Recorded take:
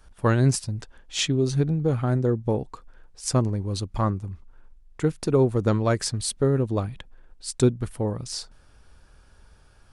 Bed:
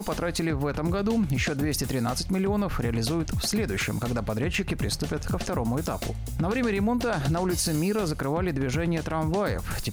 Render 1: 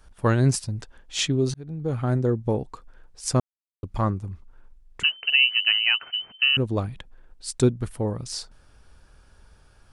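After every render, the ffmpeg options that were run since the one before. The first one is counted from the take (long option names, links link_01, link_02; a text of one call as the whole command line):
ffmpeg -i in.wav -filter_complex "[0:a]asettb=1/sr,asplit=3[link_01][link_02][link_03];[link_01]atrim=end=5.034[link_04];[link_02]atrim=start=5.03:end=6.57,asetpts=PTS-STARTPTS,afade=type=in:duration=0.004:curve=qsin,afade=type=out:start_time=1.536:duration=0.004:curve=qsin,lowpass=frequency=2600:width_type=q:width=0.5098,lowpass=frequency=2600:width_type=q:width=0.6013,lowpass=frequency=2600:width_type=q:width=0.9,lowpass=frequency=2600:width_type=q:width=2.563,afreqshift=-3100[link_05];[link_03]atrim=start=6.566[link_06];[link_04][link_05]acrossfade=duration=0.004:curve1=hsin:curve2=qsin[link_07];[link_07][link_06]acrossfade=duration=0.004:curve1=qsin:curve2=hsin,asplit=4[link_08][link_09][link_10][link_11];[link_08]atrim=end=1.54,asetpts=PTS-STARTPTS,afade=type=out:start_time=1.536:duration=0.004:curve=hsin[link_12];[link_09]atrim=start=1.54:end=3.4,asetpts=PTS-STARTPTS,afade=type=in:duration=0.55,afade=type=out:start_time=1.856:duration=0.004:curve=hsin[link_13];[link_10]atrim=start=3.4:end=3.83,asetpts=PTS-STARTPTS,volume=0[link_14];[link_11]atrim=start=3.83,asetpts=PTS-STARTPTS,afade=type=in:duration=0.004:curve=hsin[link_15];[link_12][link_13][link_14][link_15]concat=n=4:v=0:a=1" out.wav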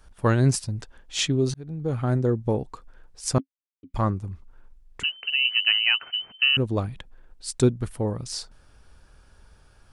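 ffmpeg -i in.wav -filter_complex "[0:a]asettb=1/sr,asplit=3[link_01][link_02][link_03];[link_01]atrim=end=3.384[link_04];[link_02]atrim=start=3.38:end=3.94,asetpts=PTS-STARTPTS,afade=type=in:duration=0.004:curve=qsin,afade=type=out:start_time=0.556:duration=0.004:curve=qsin,asplit=3[link_05][link_06][link_07];[link_05]bandpass=frequency=270:width_type=q:width=8,volume=0dB[link_08];[link_06]bandpass=frequency=2290:width_type=q:width=8,volume=-6dB[link_09];[link_07]bandpass=frequency=3010:width_type=q:width=8,volume=-9dB[link_10];[link_08][link_09][link_10]amix=inputs=3:normalize=0[link_11];[link_03]atrim=start=3.936[link_12];[link_04][link_11]acrossfade=duration=0.004:curve1=hsin:curve2=qsin[link_13];[link_13][link_12]acrossfade=duration=0.004:curve1=qsin:curve2=hsin,asettb=1/sr,asplit=3[link_14][link_15][link_16];[link_14]atrim=end=5.034[link_17];[link_15]atrim=start=5.03:end=5.45,asetpts=PTS-STARTPTS,afade=type=in:duration=0.004:curve=qsin,afade=type=out:start_time=0.416:duration=0.004:curve=qsin,acrossover=split=160|3000[link_18][link_19][link_20];[link_19]acompressor=threshold=-38dB:ratio=2.5:attack=3.2:release=140:knee=2.83:detection=peak[link_21];[link_18][link_21][link_20]amix=inputs=3:normalize=0[link_22];[link_16]atrim=start=5.446[link_23];[link_17][link_22]acrossfade=duration=0.004:curve1=hsin:curve2=qsin[link_24];[link_24][link_23]acrossfade=duration=0.004:curve1=qsin:curve2=hsin" out.wav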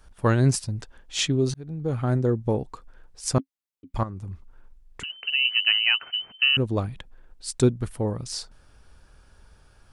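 ffmpeg -i in.wav -filter_complex "[0:a]asettb=1/sr,asplit=3[link_01][link_02][link_03];[link_01]atrim=end=4.034[link_04];[link_02]atrim=start=4.03:end=5.1,asetpts=PTS-STARTPTS,afade=type=in:duration=0.004:curve=qsin,afade=type=out:start_time=1.066:duration=0.004:curve=qsin,acompressor=threshold=-30dB:ratio=12:attack=3.2:release=140:knee=1:detection=peak[link_05];[link_03]atrim=start=5.096[link_06];[link_04][link_05]acrossfade=duration=0.004:curve1=hsin:curve2=qsin[link_07];[link_07][link_06]acrossfade=duration=0.004:curve1=qsin:curve2=hsin" out.wav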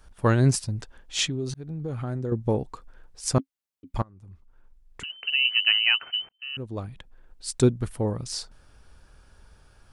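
ffmpeg -i in.wav -filter_complex "[0:a]asettb=1/sr,asplit=3[link_01][link_02][link_03];[link_01]atrim=end=1.284[link_04];[link_02]atrim=start=1.28:end=2.32,asetpts=PTS-STARTPTS,afade=type=in:duration=0.004:curve=qsin,afade=type=out:start_time=1.036:duration=0.004:curve=qsin,acompressor=threshold=-29dB:ratio=2.5:attack=3.2:release=140:knee=1:detection=peak[link_05];[link_03]atrim=start=2.316[link_06];[link_04][link_05]acrossfade=duration=0.004:curve1=hsin:curve2=qsin[link_07];[link_07][link_06]acrossfade=duration=0.004:curve1=qsin:curve2=hsin,asplit=3[link_08][link_09][link_10];[link_08]atrim=end=4.02,asetpts=PTS-STARTPTS,afade=type=out:start_time=4.016:duration=0.004:curve=hsin:silence=0.0944061[link_11];[link_09]atrim=start=4.02:end=6.29,asetpts=PTS-STARTPTS,afade=type=in:duration=1.29:silence=0.0944061,afade=type=out:start_time=2.266:duration=0.004:curve=hsin[link_12];[link_10]atrim=start=6.29,asetpts=PTS-STARTPTS,afade=type=in:duration=1.18[link_13];[link_11][link_12][link_13]concat=n=3:v=0:a=1" out.wav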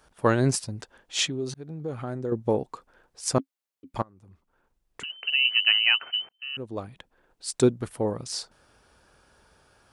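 ffmpeg -i in.wav -af "highpass=frequency=220:poles=1,equalizer=frequency=550:width_type=o:width=2.1:gain=3" out.wav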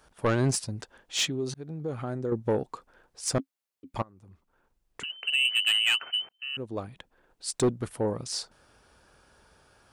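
ffmpeg -i in.wav -af "asoftclip=type=tanh:threshold=-17.5dB" out.wav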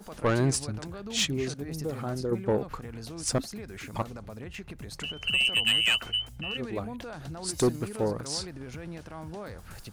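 ffmpeg -i in.wav -i bed.wav -filter_complex "[1:a]volume=-14dB[link_01];[0:a][link_01]amix=inputs=2:normalize=0" out.wav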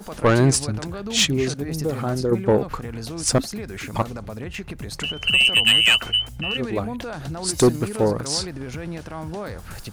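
ffmpeg -i in.wav -af "volume=8.5dB" out.wav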